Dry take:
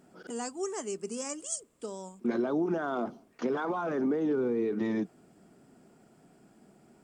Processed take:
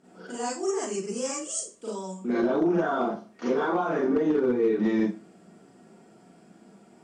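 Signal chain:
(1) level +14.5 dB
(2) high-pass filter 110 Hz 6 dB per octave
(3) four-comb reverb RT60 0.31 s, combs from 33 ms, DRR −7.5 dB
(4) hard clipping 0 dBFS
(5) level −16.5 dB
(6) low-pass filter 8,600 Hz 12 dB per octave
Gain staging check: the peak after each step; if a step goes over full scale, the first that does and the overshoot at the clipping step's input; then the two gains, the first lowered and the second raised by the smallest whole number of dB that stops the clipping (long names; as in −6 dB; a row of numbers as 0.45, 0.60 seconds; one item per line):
−3.5, −4.0, +3.5, 0.0, −16.5, −16.5 dBFS
step 3, 3.5 dB
step 1 +10.5 dB, step 5 −12.5 dB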